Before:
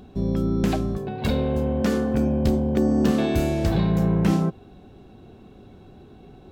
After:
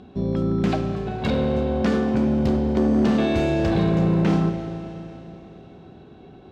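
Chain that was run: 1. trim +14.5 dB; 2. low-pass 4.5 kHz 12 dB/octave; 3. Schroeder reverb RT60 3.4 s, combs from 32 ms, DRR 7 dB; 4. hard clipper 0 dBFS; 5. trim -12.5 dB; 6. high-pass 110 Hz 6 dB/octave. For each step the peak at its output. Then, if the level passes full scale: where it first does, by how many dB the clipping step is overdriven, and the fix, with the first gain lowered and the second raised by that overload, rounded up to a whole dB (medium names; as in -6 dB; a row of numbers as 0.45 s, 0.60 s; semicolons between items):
+7.5 dBFS, +7.5 dBFS, +8.0 dBFS, 0.0 dBFS, -12.5 dBFS, -9.5 dBFS; step 1, 8.0 dB; step 1 +6.5 dB, step 5 -4.5 dB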